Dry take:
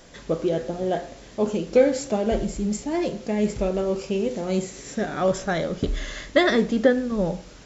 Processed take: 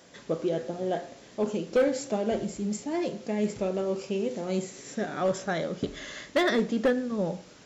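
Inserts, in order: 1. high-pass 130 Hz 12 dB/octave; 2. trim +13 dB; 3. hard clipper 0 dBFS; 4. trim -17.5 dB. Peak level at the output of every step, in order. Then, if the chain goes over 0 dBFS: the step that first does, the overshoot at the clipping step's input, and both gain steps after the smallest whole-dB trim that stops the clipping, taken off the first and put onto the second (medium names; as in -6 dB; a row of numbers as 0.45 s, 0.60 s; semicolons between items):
-5.5 dBFS, +7.5 dBFS, 0.0 dBFS, -17.5 dBFS; step 2, 7.5 dB; step 2 +5 dB, step 4 -9.5 dB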